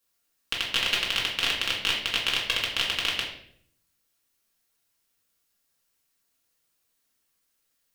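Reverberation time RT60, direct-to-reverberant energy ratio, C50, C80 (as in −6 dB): 0.65 s, −4.0 dB, 5.0 dB, 8.0 dB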